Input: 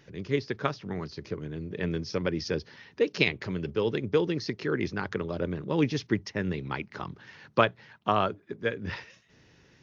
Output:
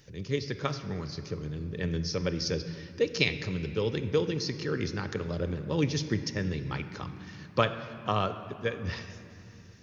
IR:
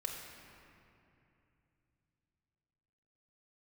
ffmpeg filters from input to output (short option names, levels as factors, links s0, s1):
-filter_complex "[0:a]bass=f=250:g=7,treble=f=4000:g=13,asplit=2[s0][s1];[1:a]atrim=start_sample=2205[s2];[s1][s2]afir=irnorm=-1:irlink=0,volume=0.631[s3];[s0][s3]amix=inputs=2:normalize=0,volume=0.447"